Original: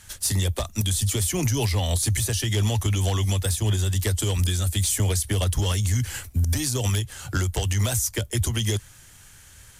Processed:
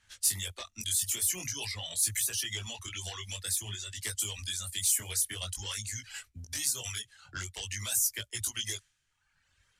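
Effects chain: pre-emphasis filter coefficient 0.9; chorus 0.49 Hz, delay 18.5 ms, depth 4.7 ms; dynamic bell 1.9 kHz, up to +7 dB, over -54 dBFS, Q 0.77; level-controlled noise filter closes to 2.1 kHz, open at -28 dBFS; in parallel at -10.5 dB: saturation -31 dBFS, distortion -9 dB; on the sum: reverb removal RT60 1.1 s

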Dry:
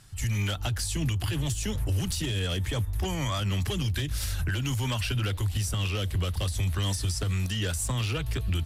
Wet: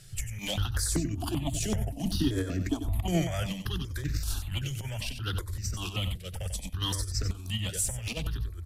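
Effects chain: bass shelf 98 Hz +5.5 dB; hum notches 50/100/150/200 Hz; compressor with a negative ratio -30 dBFS, ratio -0.5; 0.93–3.22 s: small resonant body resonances 280/670 Hz, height 15 dB, ringing for 35 ms; delay 93 ms -9 dB; stepped phaser 5.2 Hz 260–3200 Hz

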